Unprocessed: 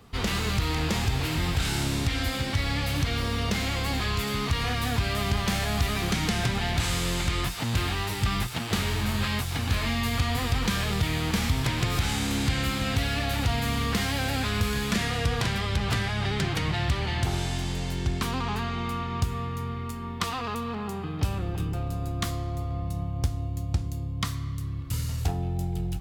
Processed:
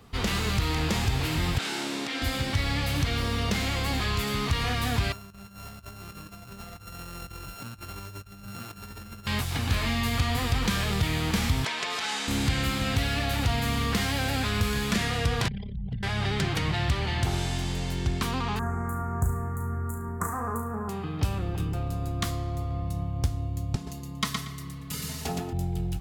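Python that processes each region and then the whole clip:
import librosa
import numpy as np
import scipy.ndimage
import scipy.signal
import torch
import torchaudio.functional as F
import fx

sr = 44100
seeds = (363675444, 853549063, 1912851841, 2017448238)

y = fx.chain(x, sr, fx.highpass(hz=240.0, slope=24),
    fx.high_shelf(hz=9600.0, db=-12.0), at=(1.58, 2.22))
y = fx.chain(y, sr, fx.sample_sort(block=32),
    fx.comb_fb(f0_hz=100.0, decay_s=0.85, harmonics='all', damping=0.0, mix_pct=80),
    fx.over_compress(threshold_db=-41.0, ratio=-0.5), at=(5.12, 9.27))
y = fx.chain(y, sr, fx.bandpass_edges(low_hz=530.0, high_hz=7300.0),
    fx.comb(ms=4.6, depth=0.55), at=(11.65, 12.28))
y = fx.chain(y, sr, fx.envelope_sharpen(power=3.0),
    fx.fixed_phaser(hz=330.0, stages=6), at=(15.48, 16.03))
y = fx.chain(y, sr, fx.ellip_bandstop(low_hz=1600.0, high_hz=7500.0, order=3, stop_db=80),
    fx.high_shelf(hz=9000.0, db=6.5),
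    fx.room_flutter(wall_m=6.1, rt60_s=0.39), at=(18.59, 20.89))
y = fx.chain(y, sr, fx.highpass(hz=150.0, slope=12),
    fx.comb(ms=4.7, depth=0.84),
    fx.echo_feedback(ms=117, feedback_pct=21, wet_db=-4.0), at=(23.75, 25.53))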